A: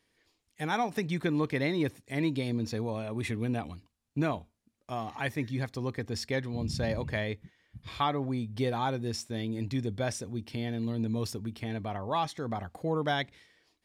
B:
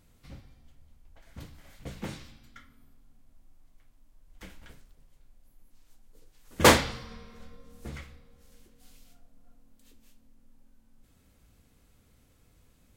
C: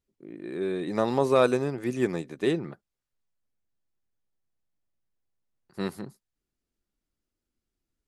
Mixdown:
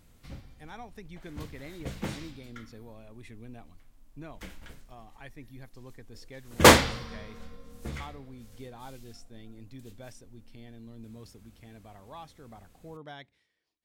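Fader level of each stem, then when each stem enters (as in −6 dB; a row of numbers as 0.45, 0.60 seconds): −15.5 dB, +3.0 dB, muted; 0.00 s, 0.00 s, muted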